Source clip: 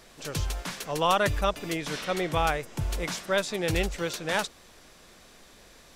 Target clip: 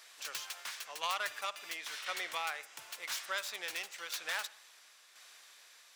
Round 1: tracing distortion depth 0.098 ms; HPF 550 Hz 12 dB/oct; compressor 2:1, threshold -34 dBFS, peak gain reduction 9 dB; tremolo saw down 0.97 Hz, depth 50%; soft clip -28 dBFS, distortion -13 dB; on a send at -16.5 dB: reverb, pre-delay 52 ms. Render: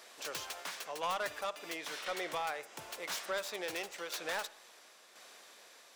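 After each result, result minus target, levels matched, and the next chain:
500 Hz band +9.0 dB; soft clip: distortion +11 dB
tracing distortion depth 0.098 ms; HPF 1300 Hz 12 dB/oct; compressor 2:1, threshold -34 dBFS, peak gain reduction 7 dB; tremolo saw down 0.97 Hz, depth 50%; soft clip -28 dBFS, distortion -15 dB; on a send at -16.5 dB: reverb, pre-delay 52 ms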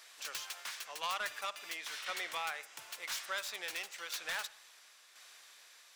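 soft clip: distortion +9 dB
tracing distortion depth 0.098 ms; HPF 1300 Hz 12 dB/oct; compressor 2:1, threshold -34 dBFS, peak gain reduction 7 dB; tremolo saw down 0.97 Hz, depth 50%; soft clip -21 dBFS, distortion -24 dB; on a send at -16.5 dB: reverb, pre-delay 52 ms

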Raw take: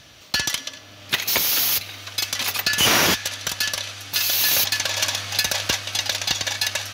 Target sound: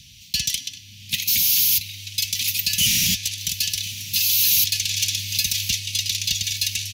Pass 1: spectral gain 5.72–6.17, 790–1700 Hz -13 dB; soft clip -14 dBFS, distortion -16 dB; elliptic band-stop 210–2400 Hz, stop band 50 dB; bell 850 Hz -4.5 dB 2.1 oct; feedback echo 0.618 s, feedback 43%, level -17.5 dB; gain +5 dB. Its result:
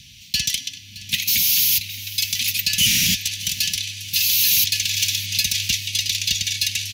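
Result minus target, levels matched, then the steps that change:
echo 0.433 s early; 1000 Hz band +6.5 dB
change: bell 850 Hz -16 dB 2.1 oct; change: feedback echo 1.051 s, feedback 43%, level -17.5 dB

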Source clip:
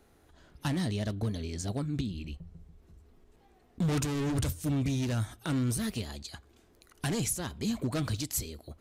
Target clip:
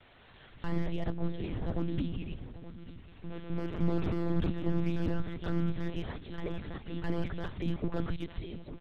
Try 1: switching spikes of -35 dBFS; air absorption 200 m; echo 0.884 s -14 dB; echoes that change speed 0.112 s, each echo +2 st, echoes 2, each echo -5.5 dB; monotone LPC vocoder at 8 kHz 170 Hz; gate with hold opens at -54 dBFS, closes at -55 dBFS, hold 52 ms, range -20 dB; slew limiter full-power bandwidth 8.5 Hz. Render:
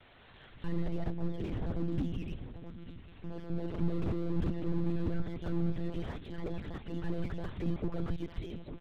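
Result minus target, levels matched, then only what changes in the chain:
slew limiter: distortion +14 dB
change: slew limiter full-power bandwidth 31 Hz

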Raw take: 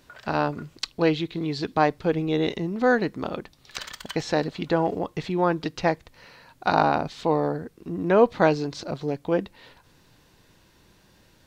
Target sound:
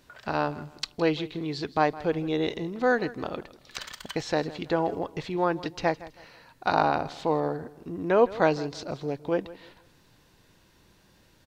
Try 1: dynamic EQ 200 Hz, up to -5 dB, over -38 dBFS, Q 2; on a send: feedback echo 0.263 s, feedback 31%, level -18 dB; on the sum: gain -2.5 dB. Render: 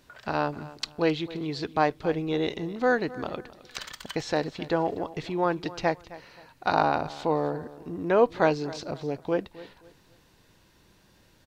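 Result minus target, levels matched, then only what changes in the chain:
echo 0.101 s late
change: feedback echo 0.162 s, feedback 31%, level -18 dB

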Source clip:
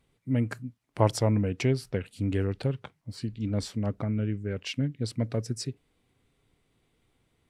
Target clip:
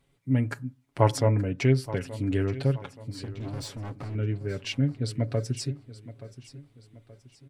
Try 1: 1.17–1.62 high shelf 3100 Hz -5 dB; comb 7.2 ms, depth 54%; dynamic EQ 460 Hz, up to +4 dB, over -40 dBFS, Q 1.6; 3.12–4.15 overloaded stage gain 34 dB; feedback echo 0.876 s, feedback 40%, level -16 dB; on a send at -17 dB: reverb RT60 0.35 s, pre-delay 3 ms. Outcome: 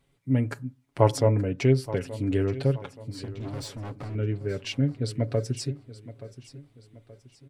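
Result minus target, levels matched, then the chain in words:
2000 Hz band -2.5 dB
1.17–1.62 high shelf 3100 Hz -5 dB; comb 7.2 ms, depth 54%; dynamic EQ 1700 Hz, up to +4 dB, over -40 dBFS, Q 1.6; 3.12–4.15 overloaded stage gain 34 dB; feedback echo 0.876 s, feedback 40%, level -16 dB; on a send at -17 dB: reverb RT60 0.35 s, pre-delay 3 ms

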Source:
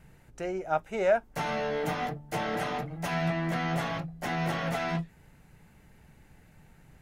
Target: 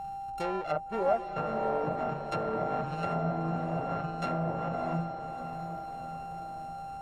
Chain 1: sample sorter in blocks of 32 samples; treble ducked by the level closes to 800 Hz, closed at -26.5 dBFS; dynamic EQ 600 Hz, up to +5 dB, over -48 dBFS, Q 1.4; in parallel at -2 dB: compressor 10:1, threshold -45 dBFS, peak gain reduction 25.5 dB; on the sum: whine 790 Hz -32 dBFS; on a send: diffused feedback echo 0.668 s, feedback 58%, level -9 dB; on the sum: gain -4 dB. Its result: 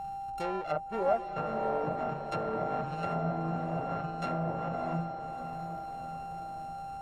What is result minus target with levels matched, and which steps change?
compressor: peak gain reduction +8.5 dB
change: compressor 10:1, threshold -35.5 dBFS, peak gain reduction 17 dB

